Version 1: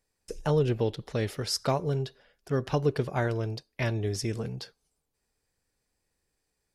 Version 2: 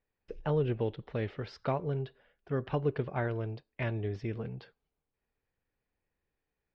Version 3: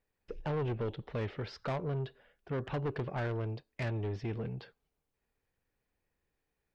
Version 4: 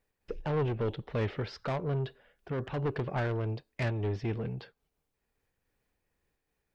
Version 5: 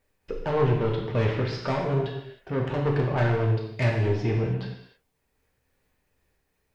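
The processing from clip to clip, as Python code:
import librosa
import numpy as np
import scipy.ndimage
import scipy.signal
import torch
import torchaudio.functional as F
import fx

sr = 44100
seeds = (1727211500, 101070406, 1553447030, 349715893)

y1 = scipy.signal.sosfilt(scipy.signal.butter(4, 3100.0, 'lowpass', fs=sr, output='sos'), x)
y1 = y1 * librosa.db_to_amplitude(-4.5)
y2 = 10.0 ** (-32.0 / 20.0) * np.tanh(y1 / 10.0 ** (-32.0 / 20.0))
y2 = y2 * librosa.db_to_amplitude(2.0)
y3 = fx.am_noise(y2, sr, seeds[0], hz=5.7, depth_pct=60)
y3 = y3 * librosa.db_to_amplitude(5.5)
y4 = fx.rev_gated(y3, sr, seeds[1], gate_ms=340, shape='falling', drr_db=-1.5)
y4 = y4 * librosa.db_to_amplitude(4.0)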